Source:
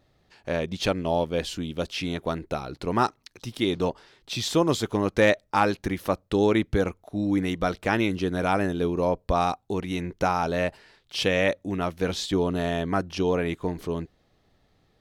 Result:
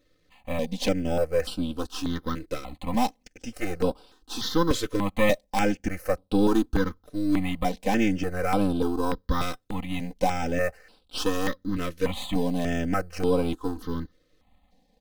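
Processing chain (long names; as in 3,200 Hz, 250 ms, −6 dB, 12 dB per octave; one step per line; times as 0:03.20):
gain on one half-wave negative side −7 dB
in parallel at −10 dB: decimation without filtering 10×
on the sum: comb filter 3.9 ms, depth 93%
step-sequenced phaser 3.4 Hz 220–6,500 Hz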